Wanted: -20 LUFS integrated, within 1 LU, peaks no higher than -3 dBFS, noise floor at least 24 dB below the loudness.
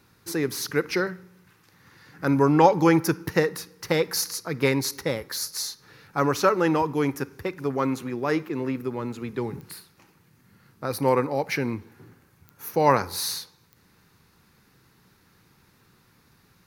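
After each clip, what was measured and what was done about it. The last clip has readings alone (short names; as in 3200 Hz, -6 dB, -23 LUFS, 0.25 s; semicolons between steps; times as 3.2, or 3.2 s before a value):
clicks 4; loudness -25.0 LUFS; peak -4.5 dBFS; loudness target -20.0 LUFS
-> de-click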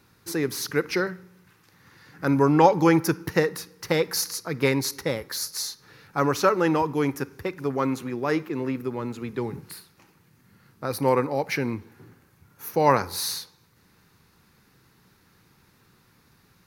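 clicks 0; loudness -25.0 LUFS; peak -4.5 dBFS; loudness target -20.0 LUFS
-> gain +5 dB; limiter -3 dBFS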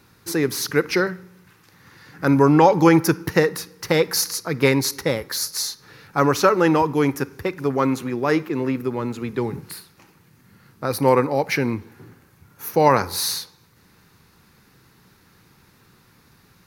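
loudness -20.5 LUFS; peak -3.0 dBFS; noise floor -56 dBFS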